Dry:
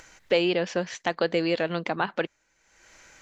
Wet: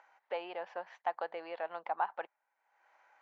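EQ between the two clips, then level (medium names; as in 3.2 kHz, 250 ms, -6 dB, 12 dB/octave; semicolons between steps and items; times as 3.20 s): ladder band-pass 920 Hz, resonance 60%; +1.0 dB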